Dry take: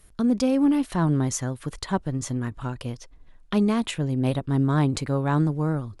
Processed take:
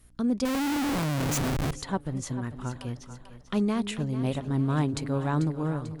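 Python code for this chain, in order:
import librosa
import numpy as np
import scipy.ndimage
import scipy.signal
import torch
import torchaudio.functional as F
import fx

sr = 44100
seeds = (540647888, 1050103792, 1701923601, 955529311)

y = fx.add_hum(x, sr, base_hz=60, snr_db=32)
y = fx.echo_split(y, sr, split_hz=500.0, low_ms=227, high_ms=442, feedback_pct=52, wet_db=-11.5)
y = fx.schmitt(y, sr, flips_db=-33.0, at=(0.45, 1.72))
y = F.gain(torch.from_numpy(y), -4.5).numpy()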